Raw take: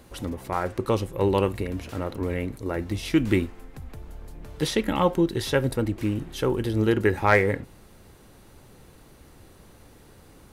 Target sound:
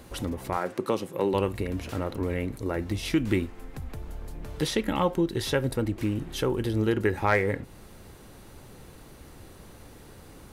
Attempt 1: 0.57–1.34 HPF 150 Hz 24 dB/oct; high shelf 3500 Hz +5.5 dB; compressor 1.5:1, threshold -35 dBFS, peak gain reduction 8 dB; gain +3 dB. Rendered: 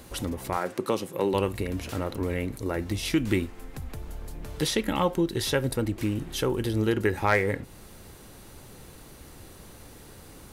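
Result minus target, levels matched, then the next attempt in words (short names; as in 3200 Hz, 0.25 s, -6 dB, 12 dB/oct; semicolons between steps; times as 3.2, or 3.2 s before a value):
8000 Hz band +4.0 dB
0.57–1.34 HPF 150 Hz 24 dB/oct; compressor 1.5:1, threshold -35 dBFS, peak gain reduction 8 dB; gain +3 dB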